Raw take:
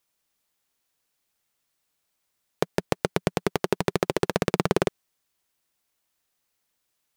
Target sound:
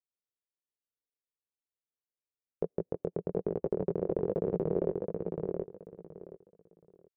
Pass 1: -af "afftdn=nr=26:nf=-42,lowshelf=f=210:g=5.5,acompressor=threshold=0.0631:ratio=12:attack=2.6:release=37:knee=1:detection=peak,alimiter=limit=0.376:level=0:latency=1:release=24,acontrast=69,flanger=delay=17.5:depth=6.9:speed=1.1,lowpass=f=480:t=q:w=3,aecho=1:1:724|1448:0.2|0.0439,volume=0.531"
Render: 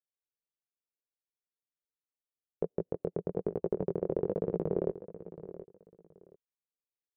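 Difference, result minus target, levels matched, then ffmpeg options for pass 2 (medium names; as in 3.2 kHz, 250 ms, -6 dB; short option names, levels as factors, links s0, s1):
echo-to-direct -10.5 dB
-af "afftdn=nr=26:nf=-42,lowshelf=f=210:g=5.5,acompressor=threshold=0.0631:ratio=12:attack=2.6:release=37:knee=1:detection=peak,alimiter=limit=0.376:level=0:latency=1:release=24,acontrast=69,flanger=delay=17.5:depth=6.9:speed=1.1,lowpass=f=480:t=q:w=3,aecho=1:1:724|1448|2172:0.668|0.147|0.0323,volume=0.531"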